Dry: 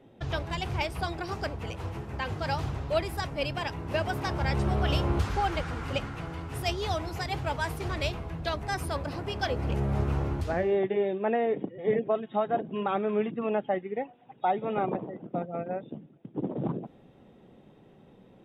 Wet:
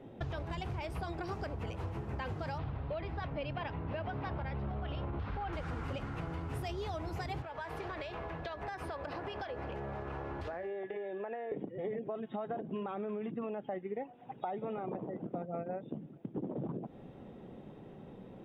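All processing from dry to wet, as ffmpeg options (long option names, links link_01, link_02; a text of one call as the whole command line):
ffmpeg -i in.wav -filter_complex "[0:a]asettb=1/sr,asplit=3[link_01][link_02][link_03];[link_01]atrim=end=2.584[link_04];[link_02]atrim=start=2.58:end=5.53,asetpts=PTS-STARTPTS,afade=type=in:duration=0.004:curve=qsin,afade=type=out:start_time=2.946:duration=0.004:curve=qsin,lowpass=frequency=3900:width=0.5412,lowpass=frequency=3900:width=1.3066,bandreject=frequency=370:width=6.5[link_05];[link_03]atrim=start=5.526[link_06];[link_04][link_05]acrossfade=duration=0.004:curve1=hsin:curve2=qsin[link_07];[link_07][link_06]acrossfade=duration=0.004:curve1=qsin:curve2=hsin,asettb=1/sr,asplit=3[link_08][link_09][link_10];[link_08]atrim=end=7.424[link_11];[link_09]atrim=start=7.42:end=11.52,asetpts=PTS-STARTPTS,afade=type=in:duration=0.004:curve=qsin,afade=type=out:start_time=4.096:duration=0.004:curve=qsin,acrossover=split=390 4700:gain=0.224 1 0.224[link_12][link_13][link_14];[link_12][link_13][link_14]amix=inputs=3:normalize=0,acompressor=threshold=-39dB:ratio=12:attack=3.2:release=140:knee=1:detection=peak,aeval=exprs='val(0)+0.00141*sin(2*PI*1700*n/s)':channel_layout=same[link_15];[link_10]atrim=start=11.516[link_16];[link_11][link_15]acrossfade=duration=0.004:curve1=hsin:curve2=qsin[link_17];[link_17][link_16]acrossfade=duration=0.004:curve1=qsin:curve2=hsin,highshelf=frequency=2500:gain=-8.5,alimiter=level_in=0.5dB:limit=-24dB:level=0:latency=1:release=39,volume=-0.5dB,acompressor=threshold=-41dB:ratio=6,volume=5dB" out.wav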